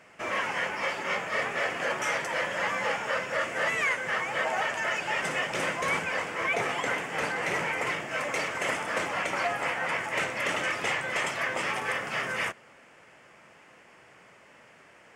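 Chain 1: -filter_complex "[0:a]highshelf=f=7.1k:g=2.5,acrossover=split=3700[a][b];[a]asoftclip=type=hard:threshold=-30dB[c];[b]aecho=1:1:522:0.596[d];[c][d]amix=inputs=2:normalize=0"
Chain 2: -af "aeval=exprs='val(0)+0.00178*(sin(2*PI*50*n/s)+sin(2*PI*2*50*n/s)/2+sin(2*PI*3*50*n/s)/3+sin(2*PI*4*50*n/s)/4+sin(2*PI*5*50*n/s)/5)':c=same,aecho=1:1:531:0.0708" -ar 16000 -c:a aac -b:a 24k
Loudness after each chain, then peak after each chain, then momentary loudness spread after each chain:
-31.0, -28.0 LUFS; -22.5, -15.0 dBFS; 2, 2 LU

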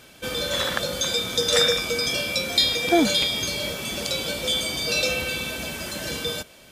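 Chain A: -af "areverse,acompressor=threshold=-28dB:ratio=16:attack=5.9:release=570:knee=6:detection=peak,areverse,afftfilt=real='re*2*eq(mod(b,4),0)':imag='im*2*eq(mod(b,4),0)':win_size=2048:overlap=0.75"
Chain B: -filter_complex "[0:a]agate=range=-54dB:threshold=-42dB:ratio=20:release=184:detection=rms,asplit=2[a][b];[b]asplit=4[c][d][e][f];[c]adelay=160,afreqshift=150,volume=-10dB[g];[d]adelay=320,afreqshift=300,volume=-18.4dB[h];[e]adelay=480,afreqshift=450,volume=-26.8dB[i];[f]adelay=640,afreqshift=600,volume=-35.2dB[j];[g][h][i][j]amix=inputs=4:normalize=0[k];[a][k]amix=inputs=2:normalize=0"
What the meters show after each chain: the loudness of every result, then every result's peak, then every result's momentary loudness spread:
-34.5, -22.5 LUFS; -21.5, -4.5 dBFS; 4, 10 LU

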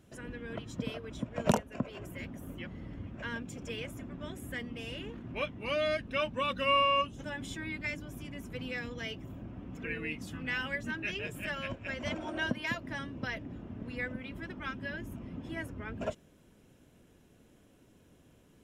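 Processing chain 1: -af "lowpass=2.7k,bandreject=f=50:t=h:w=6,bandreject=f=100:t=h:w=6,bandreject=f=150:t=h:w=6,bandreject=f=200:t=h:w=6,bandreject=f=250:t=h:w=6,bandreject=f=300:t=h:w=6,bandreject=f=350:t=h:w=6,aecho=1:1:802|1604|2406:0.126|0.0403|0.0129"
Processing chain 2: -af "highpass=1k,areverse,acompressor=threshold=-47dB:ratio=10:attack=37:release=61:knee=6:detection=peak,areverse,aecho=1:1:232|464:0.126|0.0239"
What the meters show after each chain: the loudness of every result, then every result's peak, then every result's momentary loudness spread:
-37.0, -47.0 LUFS; -14.0, -27.0 dBFS; 13, 8 LU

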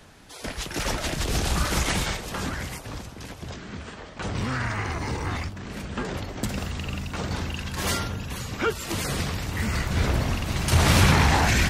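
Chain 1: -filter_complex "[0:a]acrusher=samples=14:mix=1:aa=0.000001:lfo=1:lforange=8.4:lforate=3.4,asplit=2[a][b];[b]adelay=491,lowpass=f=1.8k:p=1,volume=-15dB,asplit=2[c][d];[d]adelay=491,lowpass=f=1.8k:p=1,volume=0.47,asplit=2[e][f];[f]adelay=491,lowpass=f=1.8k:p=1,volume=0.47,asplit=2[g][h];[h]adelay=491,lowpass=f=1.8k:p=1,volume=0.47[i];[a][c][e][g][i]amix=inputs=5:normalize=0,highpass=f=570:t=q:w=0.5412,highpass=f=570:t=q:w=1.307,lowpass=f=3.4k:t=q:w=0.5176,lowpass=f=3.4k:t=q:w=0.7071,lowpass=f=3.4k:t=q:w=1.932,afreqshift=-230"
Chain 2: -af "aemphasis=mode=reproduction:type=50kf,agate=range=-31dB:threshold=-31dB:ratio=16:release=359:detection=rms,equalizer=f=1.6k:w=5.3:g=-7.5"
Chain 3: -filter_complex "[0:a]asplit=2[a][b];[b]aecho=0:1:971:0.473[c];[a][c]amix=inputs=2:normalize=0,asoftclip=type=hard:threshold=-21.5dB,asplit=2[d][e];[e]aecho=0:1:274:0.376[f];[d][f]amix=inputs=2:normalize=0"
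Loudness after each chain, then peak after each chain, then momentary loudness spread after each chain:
-32.5, -27.5, -28.0 LUFS; -10.5, -6.0, -18.5 dBFS; 18, 16, 10 LU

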